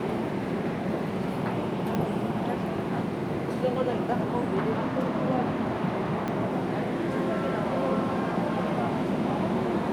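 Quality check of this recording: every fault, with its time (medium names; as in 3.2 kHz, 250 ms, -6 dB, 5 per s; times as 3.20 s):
1.95 s: pop -16 dBFS
6.28 s: pop -18 dBFS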